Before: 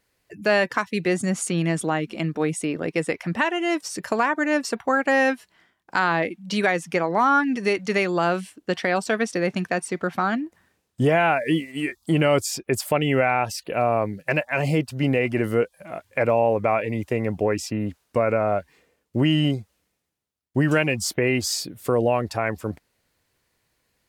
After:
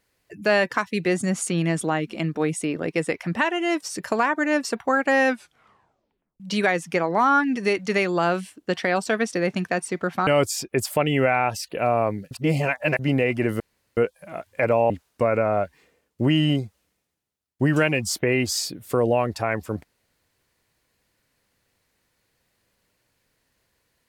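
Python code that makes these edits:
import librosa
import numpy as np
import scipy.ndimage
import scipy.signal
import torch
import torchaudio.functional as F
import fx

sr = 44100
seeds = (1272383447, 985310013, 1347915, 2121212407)

y = fx.edit(x, sr, fx.tape_stop(start_s=5.27, length_s=1.13),
    fx.cut(start_s=10.27, length_s=1.95),
    fx.reverse_span(start_s=14.26, length_s=0.68),
    fx.insert_room_tone(at_s=15.55, length_s=0.37),
    fx.cut(start_s=16.48, length_s=1.37), tone=tone)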